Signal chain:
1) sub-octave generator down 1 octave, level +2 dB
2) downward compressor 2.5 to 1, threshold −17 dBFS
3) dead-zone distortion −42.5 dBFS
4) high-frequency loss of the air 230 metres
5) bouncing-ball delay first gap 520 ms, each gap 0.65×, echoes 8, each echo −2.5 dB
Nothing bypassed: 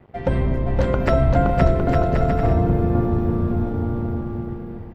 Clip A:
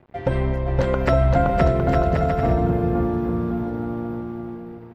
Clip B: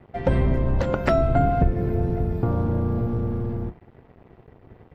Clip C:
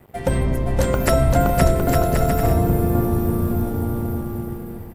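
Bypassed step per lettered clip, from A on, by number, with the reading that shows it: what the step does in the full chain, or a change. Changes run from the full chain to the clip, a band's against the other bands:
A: 1, 125 Hz band −3.0 dB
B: 5, change in momentary loudness spread −2 LU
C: 4, 4 kHz band +6.0 dB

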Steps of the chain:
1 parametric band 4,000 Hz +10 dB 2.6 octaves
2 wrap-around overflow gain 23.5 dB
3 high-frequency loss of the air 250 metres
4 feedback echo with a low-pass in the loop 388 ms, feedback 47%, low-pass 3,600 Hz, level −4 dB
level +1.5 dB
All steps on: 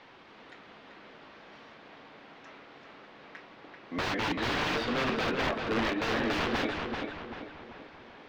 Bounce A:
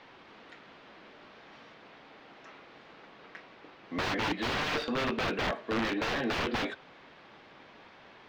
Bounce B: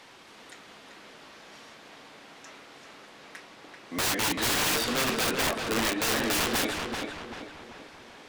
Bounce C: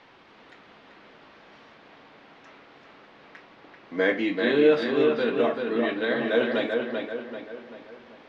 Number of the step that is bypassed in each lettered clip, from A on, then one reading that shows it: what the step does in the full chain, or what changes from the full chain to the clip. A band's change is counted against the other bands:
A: 4, change in momentary loudness spread −2 LU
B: 3, 8 kHz band +18.5 dB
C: 2, change in crest factor +3.0 dB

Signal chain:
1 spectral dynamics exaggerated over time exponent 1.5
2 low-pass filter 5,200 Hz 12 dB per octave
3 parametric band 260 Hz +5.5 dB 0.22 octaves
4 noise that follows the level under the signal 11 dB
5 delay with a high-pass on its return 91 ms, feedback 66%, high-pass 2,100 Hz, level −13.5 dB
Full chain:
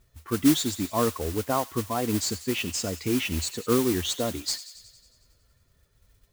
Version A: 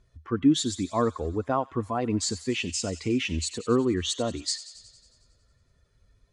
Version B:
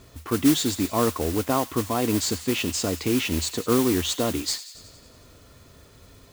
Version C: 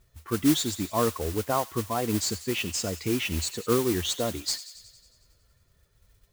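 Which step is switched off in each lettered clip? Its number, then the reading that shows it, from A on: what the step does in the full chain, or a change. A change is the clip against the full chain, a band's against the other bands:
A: 4, 8 kHz band −2.0 dB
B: 1, change in integrated loudness +2.5 LU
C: 3, 250 Hz band −2.0 dB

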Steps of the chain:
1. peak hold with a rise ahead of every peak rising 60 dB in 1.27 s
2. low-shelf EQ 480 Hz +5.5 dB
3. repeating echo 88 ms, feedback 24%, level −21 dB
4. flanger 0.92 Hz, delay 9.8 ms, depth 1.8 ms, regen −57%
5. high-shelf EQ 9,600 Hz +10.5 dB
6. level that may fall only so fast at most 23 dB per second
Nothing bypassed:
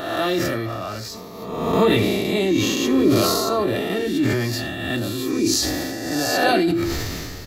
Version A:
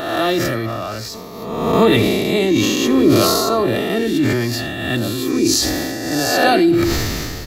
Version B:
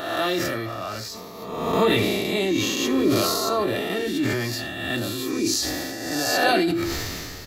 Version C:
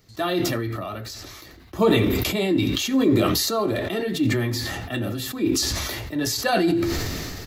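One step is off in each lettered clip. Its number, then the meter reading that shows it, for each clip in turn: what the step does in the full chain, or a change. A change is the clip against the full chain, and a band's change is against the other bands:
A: 4, change in integrated loudness +4.0 LU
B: 2, 125 Hz band −3.5 dB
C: 1, 125 Hz band +2.5 dB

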